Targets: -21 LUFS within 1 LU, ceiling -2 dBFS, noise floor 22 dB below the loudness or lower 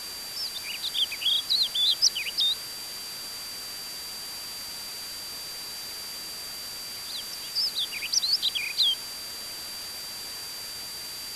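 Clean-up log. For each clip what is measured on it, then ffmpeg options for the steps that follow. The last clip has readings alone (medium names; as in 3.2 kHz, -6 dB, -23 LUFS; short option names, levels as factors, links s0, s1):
steady tone 4.7 kHz; tone level -37 dBFS; noise floor -38 dBFS; noise floor target -50 dBFS; loudness -28.0 LUFS; peak level -9.0 dBFS; loudness target -21.0 LUFS
-> -af "bandreject=f=4700:w=30"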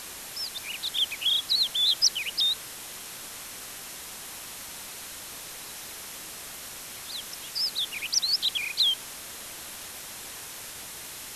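steady tone not found; noise floor -41 dBFS; noise floor target -51 dBFS
-> -af "afftdn=nr=10:nf=-41"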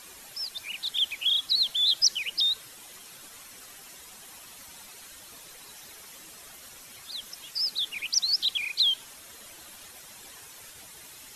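noise floor -48 dBFS; loudness -25.5 LUFS; peak level -9.5 dBFS; loudness target -21.0 LUFS
-> -af "volume=1.68"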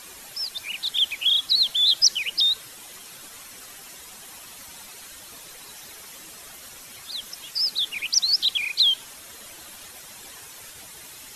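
loudness -21.0 LUFS; peak level -5.0 dBFS; noise floor -44 dBFS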